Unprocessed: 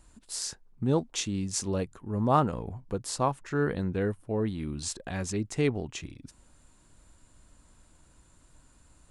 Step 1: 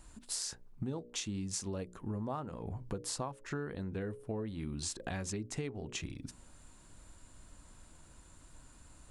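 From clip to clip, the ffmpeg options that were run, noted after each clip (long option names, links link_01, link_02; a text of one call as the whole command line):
ffmpeg -i in.wav -af "bandreject=frequency=60:width_type=h:width=6,bandreject=frequency=120:width_type=h:width=6,bandreject=frequency=180:width_type=h:width=6,bandreject=frequency=240:width_type=h:width=6,bandreject=frequency=300:width_type=h:width=6,bandreject=frequency=360:width_type=h:width=6,bandreject=frequency=420:width_type=h:width=6,bandreject=frequency=480:width_type=h:width=6,bandreject=frequency=540:width_type=h:width=6,bandreject=frequency=600:width_type=h:width=6,acompressor=threshold=-37dB:ratio=20,volume=2.5dB" out.wav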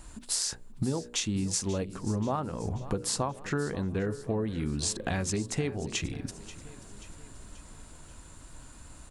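ffmpeg -i in.wav -af "aecho=1:1:534|1068|1602|2136|2670:0.158|0.0824|0.0429|0.0223|0.0116,volume=8dB" out.wav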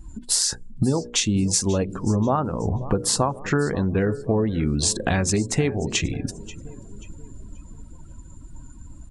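ffmpeg -i in.wav -af "afftdn=noise_reduction=21:noise_floor=-48,volume=9dB" out.wav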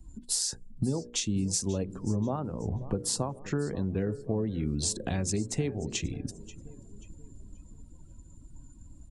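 ffmpeg -i in.wav -filter_complex "[0:a]equalizer=frequency=1400:width=0.69:gain=-8.5,acrossover=split=140|730|1500[link_01][link_02][link_03][link_04];[link_01]aeval=exprs='sgn(val(0))*max(abs(val(0))-0.00119,0)':channel_layout=same[link_05];[link_05][link_02][link_03][link_04]amix=inputs=4:normalize=0,volume=-7.5dB" out.wav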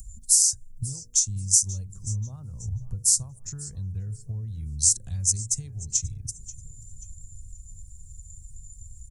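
ffmpeg -i in.wav -filter_complex "[0:a]firequalizer=gain_entry='entry(110,0);entry(160,-13);entry(280,-29);entry(1300,-22);entry(2900,-21);entry(6000,9)':delay=0.05:min_phase=1,asplit=2[link_01][link_02];[link_02]acompressor=mode=upward:threshold=-35dB:ratio=2.5,volume=-1dB[link_03];[link_01][link_03]amix=inputs=2:normalize=0,volume=-2dB" out.wav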